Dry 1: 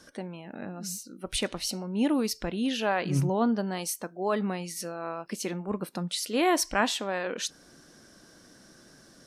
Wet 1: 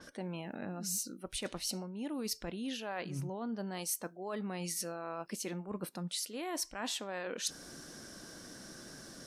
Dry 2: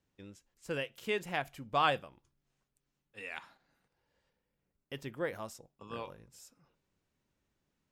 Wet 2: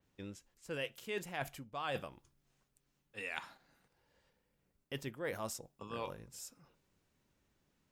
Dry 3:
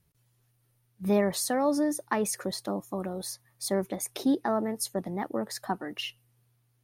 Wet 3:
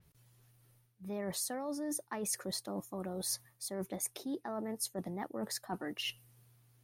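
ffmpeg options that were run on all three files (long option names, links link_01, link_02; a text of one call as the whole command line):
ffmpeg -i in.wav -af "areverse,acompressor=threshold=-40dB:ratio=12,areverse,adynamicequalizer=threshold=0.00112:dfrequency=5100:dqfactor=0.7:tfrequency=5100:tqfactor=0.7:attack=5:release=100:ratio=0.375:range=2:mode=boostabove:tftype=highshelf,volume=4dB" out.wav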